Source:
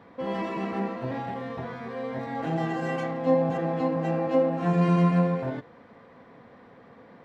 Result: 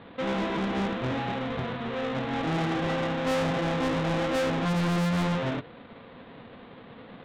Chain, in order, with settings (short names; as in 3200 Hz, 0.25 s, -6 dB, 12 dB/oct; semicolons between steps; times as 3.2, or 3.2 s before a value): half-waves squared off; elliptic low-pass 3800 Hz, stop band 40 dB; soft clip -25.5 dBFS, distortion -8 dB; gain +1 dB